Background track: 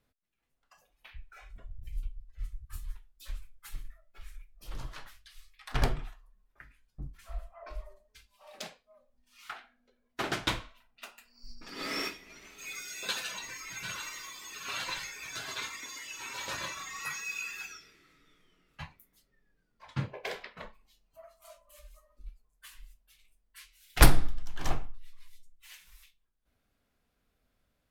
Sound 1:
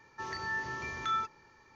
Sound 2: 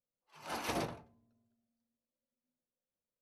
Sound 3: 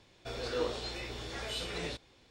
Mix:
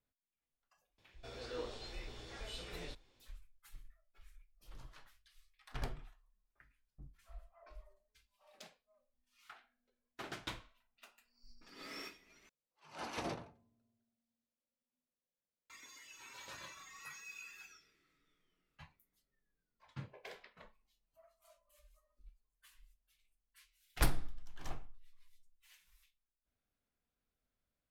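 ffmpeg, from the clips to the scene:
ffmpeg -i bed.wav -i cue0.wav -i cue1.wav -i cue2.wav -filter_complex "[0:a]volume=-13.5dB[link_01];[2:a]lowpass=7700[link_02];[link_01]asplit=2[link_03][link_04];[link_03]atrim=end=12.494[link_05];[link_02]atrim=end=3.21,asetpts=PTS-STARTPTS,volume=-4.5dB[link_06];[link_04]atrim=start=15.696[link_07];[3:a]atrim=end=2.3,asetpts=PTS-STARTPTS,volume=-10dB,afade=type=in:duration=0.004:curve=hsin,afade=type=out:start_time=2.296:duration=0.004:curve=hsin,adelay=980[link_08];[link_05][link_06]acrossfade=duration=0.004:curve1=hsin:curve2=hsin[link_09];[link_09][link_07]acrossfade=duration=0.004:curve1=hsin:curve2=hsin[link_10];[link_10][link_08]amix=inputs=2:normalize=0" out.wav

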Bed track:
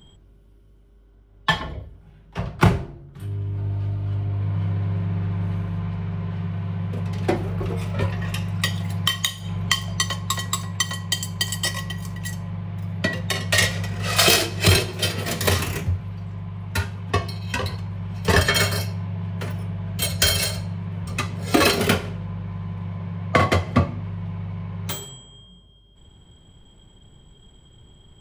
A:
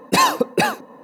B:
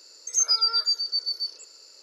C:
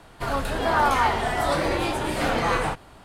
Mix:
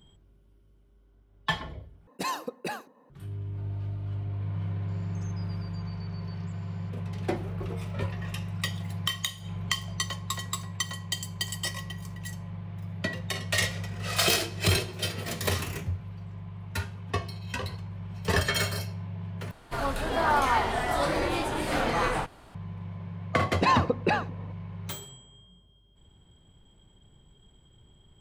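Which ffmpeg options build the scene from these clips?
ffmpeg -i bed.wav -i cue0.wav -i cue1.wav -i cue2.wav -filter_complex "[1:a]asplit=2[link_01][link_02];[0:a]volume=-8dB[link_03];[2:a]acompressor=threshold=-37dB:ratio=6:attack=3.2:release=140:knee=1:detection=peak[link_04];[link_02]lowpass=3300[link_05];[link_03]asplit=3[link_06][link_07][link_08];[link_06]atrim=end=2.074[link_09];[link_01]atrim=end=1.03,asetpts=PTS-STARTPTS,volume=-16.5dB[link_10];[link_07]atrim=start=3.096:end=19.514[link_11];[3:a]atrim=end=3.04,asetpts=PTS-STARTPTS,volume=-3.5dB[link_12];[link_08]atrim=start=22.546[link_13];[link_04]atrim=end=2.02,asetpts=PTS-STARTPTS,volume=-18dB,afade=type=in:duration=0.004:curve=hsin,afade=type=out:start_time=2.016:duration=0.004:curve=hsin,adelay=4880[link_14];[link_05]atrim=end=1.03,asetpts=PTS-STARTPTS,volume=-7dB,afade=type=in:duration=0.004:curve=hsin,afade=type=out:start_time=1.026:duration=0.004:curve=hsin,adelay=23490[link_15];[link_09][link_10]acrossfade=duration=0.004:curve1=hsin:curve2=hsin[link_16];[link_16][link_11]acrossfade=duration=0.004:curve1=hsin:curve2=hsin[link_17];[link_17][link_12]acrossfade=duration=0.004:curve1=hsin:curve2=hsin[link_18];[link_18][link_13]acrossfade=duration=0.004:curve1=hsin:curve2=hsin[link_19];[link_19][link_14][link_15]amix=inputs=3:normalize=0" out.wav

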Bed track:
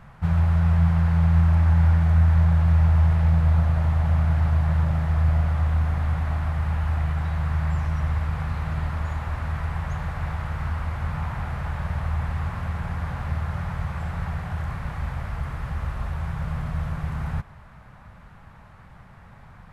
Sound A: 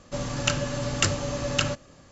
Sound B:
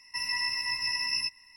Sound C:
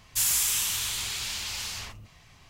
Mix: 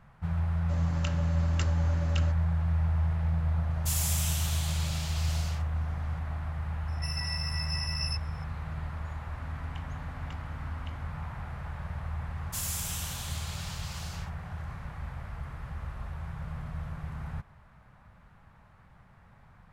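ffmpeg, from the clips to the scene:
ffmpeg -i bed.wav -i cue0.wav -i cue1.wav -i cue2.wav -filter_complex "[1:a]asplit=2[link_01][link_02];[3:a]asplit=2[link_03][link_04];[0:a]volume=-9.5dB[link_05];[link_01]highshelf=frequency=5700:gain=-9.5[link_06];[2:a]equalizer=frequency=14000:width_type=o:width=2.8:gain=9.5[link_07];[link_02]asplit=3[link_08][link_09][link_10];[link_08]bandpass=frequency=270:width_type=q:width=8,volume=0dB[link_11];[link_09]bandpass=frequency=2290:width_type=q:width=8,volume=-6dB[link_12];[link_10]bandpass=frequency=3010:width_type=q:width=8,volume=-9dB[link_13];[link_11][link_12][link_13]amix=inputs=3:normalize=0[link_14];[link_06]atrim=end=2.11,asetpts=PTS-STARTPTS,volume=-12dB,afade=type=in:duration=0.004:curve=hsin,afade=type=out:start_time=2.106:duration=0.004:curve=hsin,adelay=570[link_15];[link_03]atrim=end=2.49,asetpts=PTS-STARTPTS,volume=-7.5dB,afade=type=in:duration=0.004:curve=hsin,afade=type=out:start_time=2.486:duration=0.004:curve=hsin,adelay=3700[link_16];[link_07]atrim=end=1.56,asetpts=PTS-STARTPTS,volume=-12.5dB,afade=type=in:duration=0.004:curve=hsin,afade=type=out:start_time=1.556:duration=0.004:curve=hsin,adelay=6880[link_17];[link_14]atrim=end=2.11,asetpts=PTS-STARTPTS,volume=-14.5dB,afade=type=in:duration=0.004:curve=hsin,afade=type=out:start_time=2.106:duration=0.004:curve=hsin,adelay=9280[link_18];[link_04]atrim=end=2.49,asetpts=PTS-STARTPTS,volume=-10.5dB,afade=type=in:duration=0.004:curve=hsin,afade=type=out:start_time=2.486:duration=0.004:curve=hsin,adelay=12370[link_19];[link_05][link_15][link_16][link_17][link_18][link_19]amix=inputs=6:normalize=0" out.wav

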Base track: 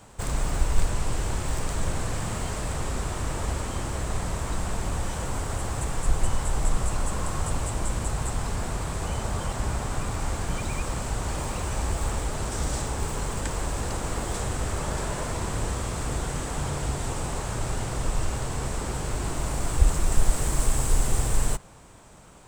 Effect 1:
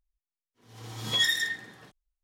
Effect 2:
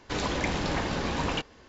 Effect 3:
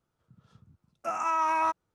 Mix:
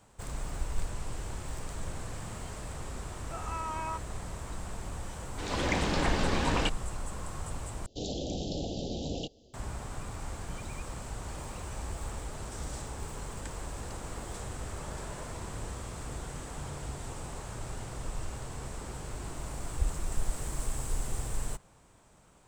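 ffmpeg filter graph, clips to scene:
ffmpeg -i bed.wav -i cue0.wav -i cue1.wav -i cue2.wav -filter_complex "[2:a]asplit=2[link_01][link_02];[0:a]volume=-10.5dB[link_03];[link_01]dynaudnorm=framelen=160:gausssize=3:maxgain=12dB[link_04];[link_02]asuperstop=centerf=1500:order=12:qfactor=0.64[link_05];[link_03]asplit=2[link_06][link_07];[link_06]atrim=end=7.864[link_08];[link_05]atrim=end=1.68,asetpts=PTS-STARTPTS,volume=-4.5dB[link_09];[link_07]atrim=start=9.536[link_10];[3:a]atrim=end=1.94,asetpts=PTS-STARTPTS,volume=-10.5dB,afade=type=in:duration=0.004:curve=hsin,afade=type=out:start_time=1.936:duration=0.004:curve=hsin,adelay=2260[link_11];[link_04]atrim=end=1.68,asetpts=PTS-STARTPTS,volume=-11.5dB,afade=type=in:duration=0.004:curve=hsin,afade=type=out:start_time=1.676:duration=0.004:curve=hsin,adelay=5280[link_12];[link_08][link_09]acrossfade=duration=0.004:curve1=hsin:curve2=hsin[link_13];[link_13][link_10]acrossfade=duration=0.004:curve1=hsin:curve2=hsin[link_14];[link_14][link_11][link_12]amix=inputs=3:normalize=0" out.wav

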